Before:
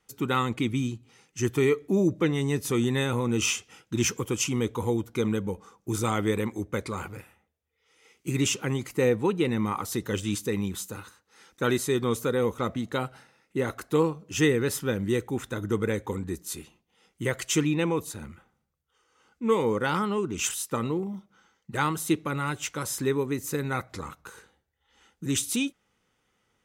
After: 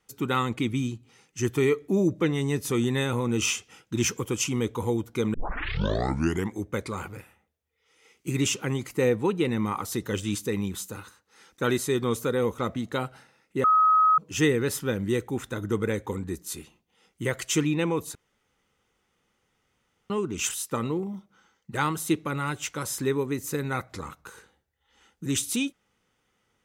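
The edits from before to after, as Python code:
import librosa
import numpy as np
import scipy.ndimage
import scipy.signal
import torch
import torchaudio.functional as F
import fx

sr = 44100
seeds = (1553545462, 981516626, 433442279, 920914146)

y = fx.edit(x, sr, fx.tape_start(start_s=5.34, length_s=1.21),
    fx.bleep(start_s=13.64, length_s=0.54, hz=1270.0, db=-16.0),
    fx.room_tone_fill(start_s=18.15, length_s=1.95), tone=tone)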